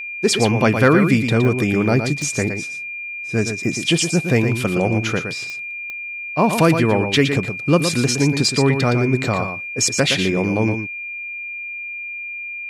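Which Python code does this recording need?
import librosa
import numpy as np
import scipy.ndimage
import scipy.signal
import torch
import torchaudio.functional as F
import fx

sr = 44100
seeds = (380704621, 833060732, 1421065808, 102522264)

y = fx.fix_declip(x, sr, threshold_db=-4.0)
y = fx.fix_declick_ar(y, sr, threshold=10.0)
y = fx.notch(y, sr, hz=2400.0, q=30.0)
y = fx.fix_echo_inverse(y, sr, delay_ms=116, level_db=-7.5)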